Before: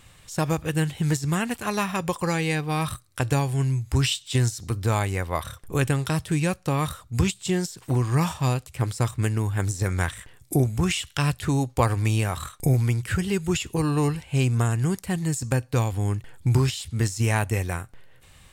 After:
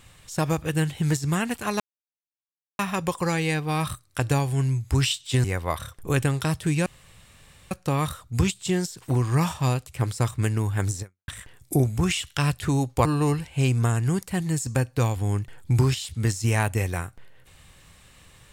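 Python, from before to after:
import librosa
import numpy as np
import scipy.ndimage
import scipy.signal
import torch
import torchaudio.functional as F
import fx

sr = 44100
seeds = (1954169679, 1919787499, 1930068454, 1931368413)

y = fx.edit(x, sr, fx.insert_silence(at_s=1.8, length_s=0.99),
    fx.cut(start_s=4.45, length_s=0.64),
    fx.insert_room_tone(at_s=6.51, length_s=0.85),
    fx.fade_out_span(start_s=9.8, length_s=0.28, curve='exp'),
    fx.cut(start_s=11.85, length_s=1.96), tone=tone)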